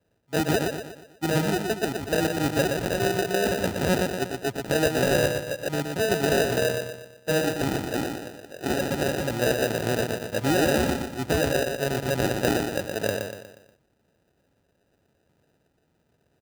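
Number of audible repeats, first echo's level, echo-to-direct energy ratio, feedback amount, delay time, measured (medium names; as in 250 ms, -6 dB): 5, -5.0 dB, -4.0 dB, 44%, 120 ms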